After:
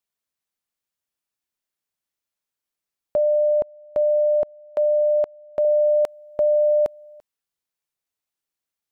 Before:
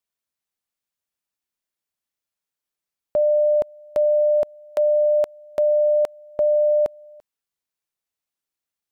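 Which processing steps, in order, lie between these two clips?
3.17–5.65 s: low-pass 1.2 kHz 6 dB/octave

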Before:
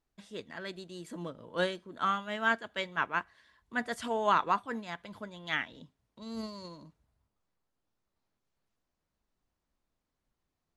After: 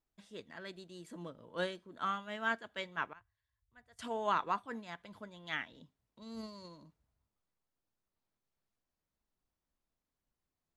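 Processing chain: 3.13–3.99 s: FFT filter 110 Hz 0 dB, 200 Hz -28 dB, 730 Hz -22 dB; trim -6 dB

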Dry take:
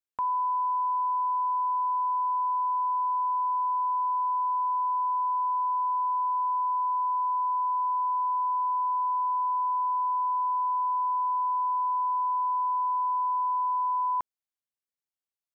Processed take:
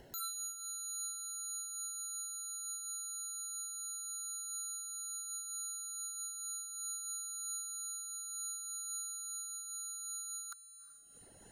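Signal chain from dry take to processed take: reverb removal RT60 1 s; upward compressor, threshold -45 dBFS; boxcar filter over 50 samples; sine folder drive 17 dB, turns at -42.5 dBFS; on a send: echo that smears into a reverb 497 ms, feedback 60%, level -15 dB; on the sum: speed mistake 33 rpm record played at 45 rpm; random flutter of the level, depth 60%; trim +6.5 dB

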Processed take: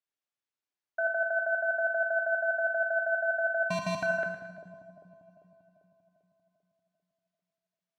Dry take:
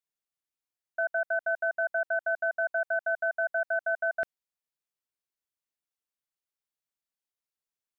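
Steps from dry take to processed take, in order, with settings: 3.63–4.03 s: sample-rate reducer 1.7 kHz, jitter 0%; high-pass 170 Hz 6 dB/octave; distance through air 89 m; two-band feedback delay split 740 Hz, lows 395 ms, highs 111 ms, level -11 dB; two-slope reverb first 0.85 s, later 3.4 s, from -25 dB, DRR 4.5 dB

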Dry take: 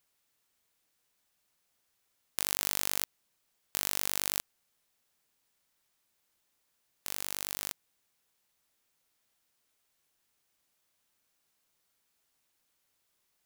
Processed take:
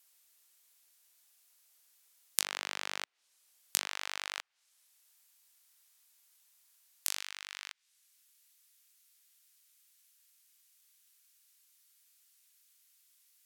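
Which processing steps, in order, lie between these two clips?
high-pass 280 Hz 12 dB/octave, from 3.87 s 660 Hz, from 7.20 s 1.4 kHz; low-pass that closes with the level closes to 2.3 kHz, closed at -40.5 dBFS; tilt EQ +3.5 dB/octave

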